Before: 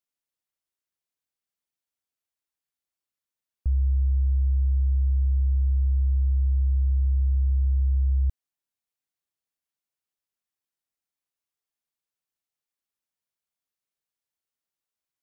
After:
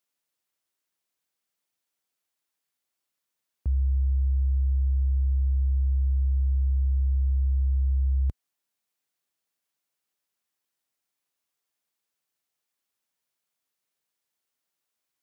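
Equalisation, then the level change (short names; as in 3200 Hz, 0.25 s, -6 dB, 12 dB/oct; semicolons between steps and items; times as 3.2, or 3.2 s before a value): HPF 50 Hz; low shelf 88 Hz -11 dB; +6.5 dB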